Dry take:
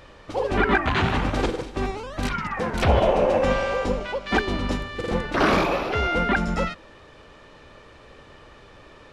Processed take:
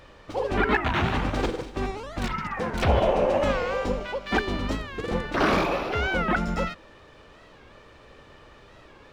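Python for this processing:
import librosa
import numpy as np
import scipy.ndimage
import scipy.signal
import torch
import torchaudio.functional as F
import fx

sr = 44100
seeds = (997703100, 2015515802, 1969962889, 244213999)

y = scipy.signal.medfilt(x, 3)
y = fx.record_warp(y, sr, rpm=45.0, depth_cents=160.0)
y = y * 10.0 ** (-2.5 / 20.0)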